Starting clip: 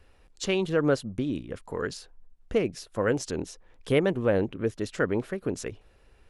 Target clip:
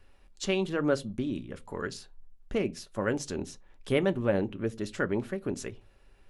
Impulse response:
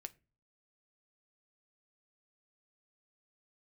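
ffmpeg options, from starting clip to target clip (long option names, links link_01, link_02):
-filter_complex "[0:a]equalizer=frequency=500:width=5.5:gain=-5[link_01];[1:a]atrim=start_sample=2205,afade=type=out:start_time=0.31:duration=0.01,atrim=end_sample=14112,asetrate=66150,aresample=44100[link_02];[link_01][link_02]afir=irnorm=-1:irlink=0,volume=6.5dB"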